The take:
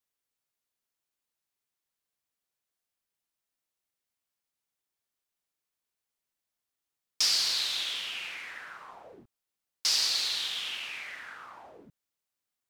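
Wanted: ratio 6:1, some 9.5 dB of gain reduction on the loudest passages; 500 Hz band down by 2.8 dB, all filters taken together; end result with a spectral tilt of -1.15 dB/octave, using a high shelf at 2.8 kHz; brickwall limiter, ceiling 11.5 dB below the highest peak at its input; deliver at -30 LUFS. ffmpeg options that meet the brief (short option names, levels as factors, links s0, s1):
-af "equalizer=f=500:t=o:g=-3.5,highshelf=f=2800:g=-3,acompressor=threshold=0.0178:ratio=6,volume=3.16,alimiter=limit=0.0841:level=0:latency=1"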